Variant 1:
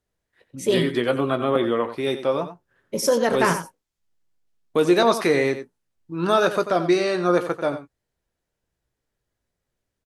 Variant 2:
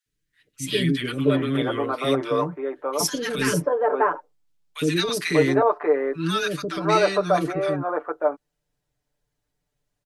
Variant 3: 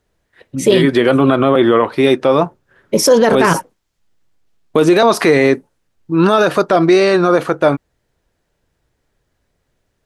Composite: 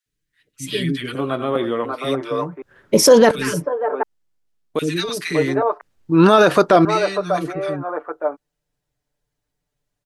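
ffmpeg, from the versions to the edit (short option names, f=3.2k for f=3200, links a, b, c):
-filter_complex "[0:a]asplit=2[a][b];[2:a]asplit=2[c][d];[1:a]asplit=5[e][f][g][h][i];[e]atrim=end=1.152[j];[a]atrim=start=1.148:end=1.852[k];[f]atrim=start=1.848:end=2.622[l];[c]atrim=start=2.618:end=3.312[m];[g]atrim=start=3.308:end=4.032[n];[b]atrim=start=4.028:end=4.792[o];[h]atrim=start=4.788:end=5.812[p];[d]atrim=start=5.808:end=6.852[q];[i]atrim=start=6.848[r];[j][k]acrossfade=d=0.004:c1=hsin:c2=hsin[s];[s][l]acrossfade=d=0.004:c1=hsin:c2=hsin[t];[t][m]acrossfade=d=0.004:c1=hsin:c2=hsin[u];[u][n]acrossfade=d=0.004:c1=hsin:c2=hsin[v];[v][o]acrossfade=d=0.004:c1=hsin:c2=hsin[w];[w][p]acrossfade=d=0.004:c1=hsin:c2=hsin[x];[x][q]acrossfade=d=0.004:c1=hsin:c2=hsin[y];[y][r]acrossfade=d=0.004:c1=hsin:c2=hsin"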